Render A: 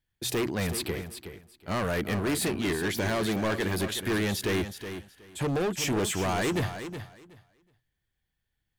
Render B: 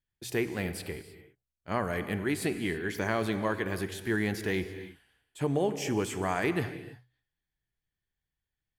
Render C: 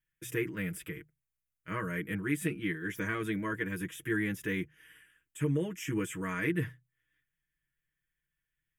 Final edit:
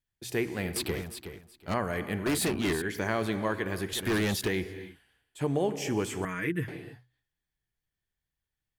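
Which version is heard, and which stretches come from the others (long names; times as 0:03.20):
B
0:00.76–0:01.74: punch in from A
0:02.26–0:02.82: punch in from A
0:03.93–0:04.48: punch in from A
0:06.25–0:06.68: punch in from C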